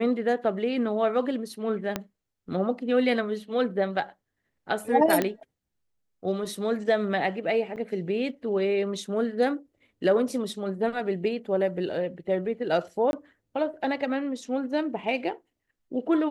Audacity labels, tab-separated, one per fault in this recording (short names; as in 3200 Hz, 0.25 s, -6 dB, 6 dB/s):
1.960000	1.960000	pop -12 dBFS
5.220000	5.220000	pop -11 dBFS
7.760000	7.770000	gap 7.6 ms
13.110000	13.130000	gap 21 ms